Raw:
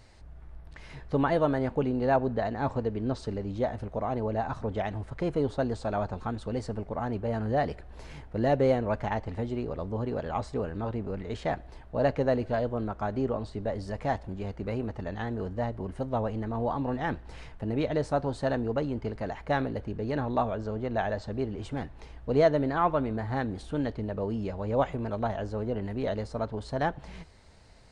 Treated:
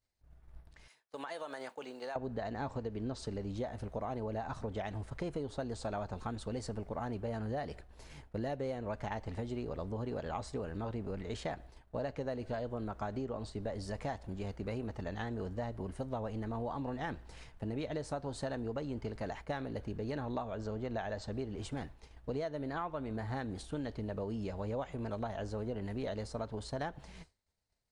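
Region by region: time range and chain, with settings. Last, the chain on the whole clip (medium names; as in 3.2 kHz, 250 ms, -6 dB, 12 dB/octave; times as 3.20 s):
0.88–2.16 s: Bessel high-pass 760 Hz + treble shelf 6.8 kHz +11.5 dB + compression 12:1, threshold -33 dBFS
whole clip: expander -38 dBFS; treble shelf 4.7 kHz +10.5 dB; compression 12:1, threshold -30 dBFS; trim -4 dB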